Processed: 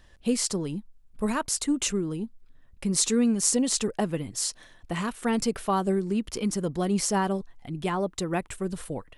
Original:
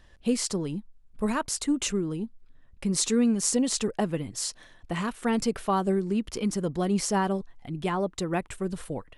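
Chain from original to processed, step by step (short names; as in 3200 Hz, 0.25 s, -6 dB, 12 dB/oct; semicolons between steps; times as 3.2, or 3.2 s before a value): high shelf 6700 Hz +5 dB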